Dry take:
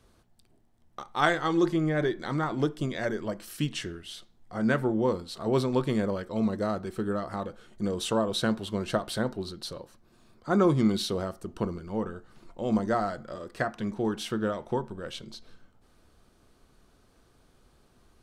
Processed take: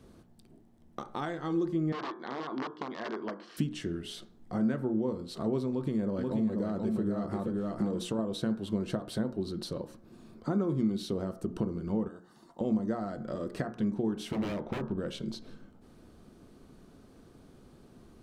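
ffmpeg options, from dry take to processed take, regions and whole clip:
-filter_complex "[0:a]asettb=1/sr,asplit=3[a][b][c];[a]atrim=end=1.924[d];[b]atrim=start=1.92:end=3.57,asetpts=PTS-STARTPTS,afade=t=in:d=0.004:c=qsin,afade=t=out:st=1.646:d=0.004:c=qsin,bandreject=f=1.3k:w=13,aeval=exprs='(mod(14.1*val(0)+1,2)-1)/14.1':c=same,highpass=380,equalizer=f=550:t=q:w=4:g=-5,equalizer=f=1.1k:t=q:w=4:g=7,equalizer=f=2.5k:t=q:w=4:g=-6,equalizer=f=3.7k:t=q:w=4:g=-3,lowpass=f=4.3k:w=0.5412,lowpass=f=4.3k:w=1.3066[e];[c]atrim=start=3.566[f];[d][e]acrossfade=d=0.004:c1=hsin:c2=qsin[g];[g][f]acrossfade=d=0.004:c1=qsin:c2=hsin,asettb=1/sr,asplit=3[h][i][j];[h]atrim=end=5.704[k];[i]atrim=start=5.7:end=8.19,asetpts=PTS-STARTPTS,afade=t=in:d=0.004:c=qsin,afade=t=out:st=2.486:d=0.004:c=qsin,acompressor=threshold=-28dB:ratio=3:attack=3.2:release=140:knee=1:detection=peak,aecho=1:1:483:0.631,atrim=end_sample=109809[l];[j]atrim=start=8.186[m];[k][l]acrossfade=d=0.004:c1=hsin:c2=qsin[n];[n][m]acrossfade=d=0.004:c1=qsin:c2=hsin,asettb=1/sr,asplit=3[o][p][q];[o]atrim=end=12.084[r];[p]atrim=start=12.08:end=12.61,asetpts=PTS-STARTPTS,afade=t=in:d=0.004:c=qsin,afade=t=out:st=0.526:d=0.004:c=qsin,highpass=f=1k:p=1,equalizer=f=2.4k:t=o:w=0.44:g=-14.5,aecho=1:1:1.1:0.37,atrim=end_sample=23373[s];[q]atrim=start=12.606[t];[r][s]acrossfade=d=0.004:c1=hsin:c2=qsin[u];[u][t]acrossfade=d=0.004:c1=qsin:c2=hsin,asettb=1/sr,asplit=3[v][w][x];[v]atrim=end=14.324[y];[w]atrim=start=14.32:end=14.98,asetpts=PTS-STARTPTS,afade=t=in:d=0.004:c=qsin,afade=t=out:st=0.656:d=0.004:c=qsin,lowpass=3.8k,aeval=exprs='0.0299*(abs(mod(val(0)/0.0299+3,4)-2)-1)':c=same[z];[x]atrim=start=14.976[aa];[y][z]acrossfade=d=0.004:c1=hsin:c2=qsin[ab];[ab][aa]acrossfade=d=0.004:c1=qsin:c2=hsin,acompressor=threshold=-39dB:ratio=5,equalizer=f=230:t=o:w=2.6:g=12.5,bandreject=f=60.08:t=h:w=4,bandreject=f=120.16:t=h:w=4,bandreject=f=180.24:t=h:w=4,bandreject=f=240.32:t=h:w=4,bandreject=f=300.4:t=h:w=4,bandreject=f=360.48:t=h:w=4,bandreject=f=420.56:t=h:w=4,bandreject=f=480.64:t=h:w=4,bandreject=f=540.72:t=h:w=4,bandreject=f=600.8:t=h:w=4,bandreject=f=660.88:t=h:w=4,bandreject=f=720.96:t=h:w=4,bandreject=f=781.04:t=h:w=4,bandreject=f=841.12:t=h:w=4,bandreject=f=901.2:t=h:w=4,bandreject=f=961.28:t=h:w=4,bandreject=f=1.02136k:t=h:w=4,bandreject=f=1.08144k:t=h:w=4,bandreject=f=1.14152k:t=h:w=4,bandreject=f=1.2016k:t=h:w=4,bandreject=f=1.26168k:t=h:w=4,bandreject=f=1.32176k:t=h:w=4,bandreject=f=1.38184k:t=h:w=4,bandreject=f=1.44192k:t=h:w=4,bandreject=f=1.502k:t=h:w=4,bandreject=f=1.56208k:t=h:w=4,bandreject=f=1.62216k:t=h:w=4,bandreject=f=1.68224k:t=h:w=4"

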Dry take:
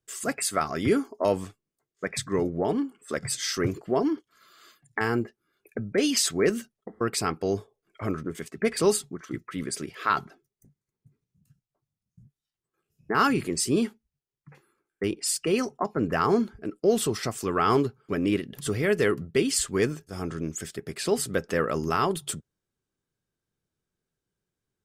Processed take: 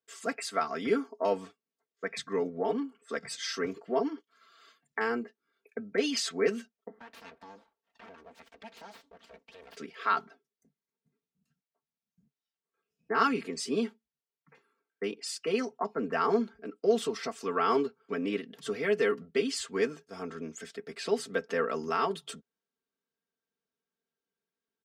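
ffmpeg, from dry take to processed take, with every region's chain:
-filter_complex "[0:a]asettb=1/sr,asplit=3[a][b][c];[a]atrim=end=6.994[d];[b]atrim=start=6.99:end=9.77,asetpts=PTS-STARTPTS,afade=t=in:d=0.004:c=qsin,afade=t=out:st=2.776:d=0.004:c=qsin,acompressor=threshold=-42dB:ratio=2.5:attack=3.2:release=140:knee=1:detection=peak,aeval=exprs='abs(val(0))':c=same[e];[c]atrim=start=9.766[f];[d][e]acrossfade=d=0.004:c1=hsin:c2=qsin[g];[g][f]acrossfade=d=0.004:c1=qsin:c2=hsin,highpass=71,acrossover=split=240 6100:gain=0.2 1 0.141[h][i][j];[h][i][j]amix=inputs=3:normalize=0,aecho=1:1:4.4:0.75,volume=-5.5dB"

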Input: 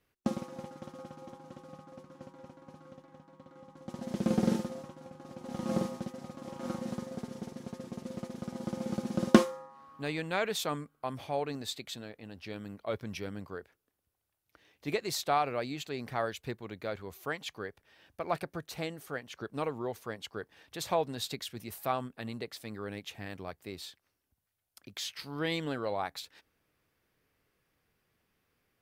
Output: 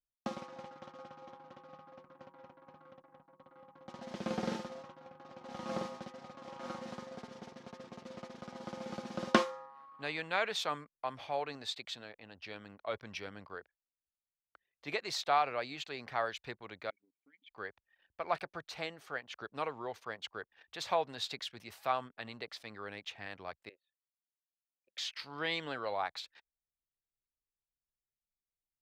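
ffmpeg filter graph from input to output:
-filter_complex "[0:a]asettb=1/sr,asplit=3[a][b][c];[a]atrim=end=16.904[d];[b]atrim=start=16.9:end=17.51,asetpts=PTS-STARTPTS,afade=t=in:d=0.004:c=qsin,afade=t=out:st=0.606:d=0.004:c=qsin,equalizer=f=1.4k:w=1.6:g=5.5,acompressor=threshold=-45dB:ratio=2.5:attack=3.2:release=140:knee=1:detection=peak,asplit=3[e][f][g];[e]bandpass=f=270:t=q:w=8,volume=0dB[h];[f]bandpass=f=2.29k:t=q:w=8,volume=-6dB[i];[g]bandpass=f=3.01k:t=q:w=8,volume=-9dB[j];[h][i][j]amix=inputs=3:normalize=0[k];[c]atrim=start=17.506[l];[d][k]acrossfade=d=0.004:c1=hsin:c2=qsin[m];[m][l]acrossfade=d=0.004:c1=qsin:c2=hsin,asettb=1/sr,asplit=3[n][o][p];[n]atrim=end=23.694[q];[o]atrim=start=23.69:end=24.98,asetpts=PTS-STARTPTS,afade=t=in:d=0.004:c=qsin,afade=t=out:st=1.286:d=0.004:c=qsin,asplit=3[r][s][t];[r]bandpass=f=530:t=q:w=8,volume=0dB[u];[s]bandpass=f=1.84k:t=q:w=8,volume=-6dB[v];[t]bandpass=f=2.48k:t=q:w=8,volume=-9dB[w];[u][v][w]amix=inputs=3:normalize=0,highshelf=f=4.2k:g=-4.5[x];[p]atrim=start=24.976[y];[q][x]acrossfade=d=0.004:c1=hsin:c2=qsin[z];[z][y]acrossfade=d=0.004:c1=qsin:c2=hsin,anlmdn=0.000251,acrossover=split=580 5900:gain=0.251 1 0.126[aa][ab][ac];[aa][ab][ac]amix=inputs=3:normalize=0,volume=1dB"

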